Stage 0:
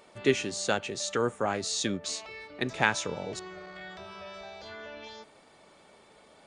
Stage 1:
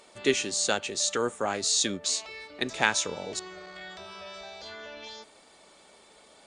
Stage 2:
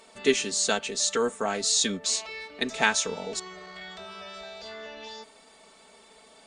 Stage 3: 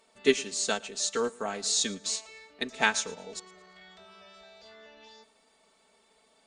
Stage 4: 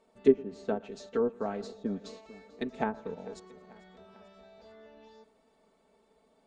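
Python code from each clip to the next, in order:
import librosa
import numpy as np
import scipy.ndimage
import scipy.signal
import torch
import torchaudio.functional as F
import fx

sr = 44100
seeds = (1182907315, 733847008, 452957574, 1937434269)

y1 = fx.graphic_eq(x, sr, hz=(125, 4000, 8000), db=(-7, 4, 8))
y2 = y1 + 0.62 * np.pad(y1, (int(4.5 * sr / 1000.0), 0))[:len(y1)]
y3 = fx.echo_feedback(y2, sr, ms=113, feedback_pct=40, wet_db=-18)
y3 = fx.upward_expand(y3, sr, threshold_db=-39.0, expansion=1.5)
y4 = fx.env_lowpass_down(y3, sr, base_hz=920.0, full_db=-24.0)
y4 = fx.tilt_shelf(y4, sr, db=9.0, hz=1100.0)
y4 = fx.echo_feedback(y4, sr, ms=443, feedback_pct=56, wet_db=-21.0)
y4 = y4 * librosa.db_to_amplitude(-4.5)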